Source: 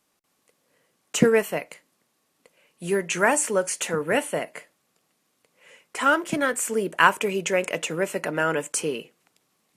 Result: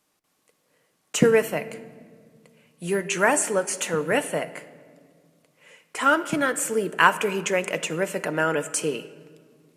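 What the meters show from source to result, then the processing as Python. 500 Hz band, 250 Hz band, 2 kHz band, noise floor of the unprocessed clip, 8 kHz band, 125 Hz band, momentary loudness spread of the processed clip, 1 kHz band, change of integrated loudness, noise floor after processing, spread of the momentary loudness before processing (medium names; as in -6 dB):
+0.5 dB, 0.0 dB, 0.0 dB, -72 dBFS, 0.0 dB, +1.5 dB, 14 LU, +0.5 dB, +0.5 dB, -71 dBFS, 11 LU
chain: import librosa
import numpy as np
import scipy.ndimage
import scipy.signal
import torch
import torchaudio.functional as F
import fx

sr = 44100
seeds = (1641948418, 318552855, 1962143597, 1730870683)

y = fx.room_shoebox(x, sr, seeds[0], volume_m3=2800.0, walls='mixed', distance_m=0.5)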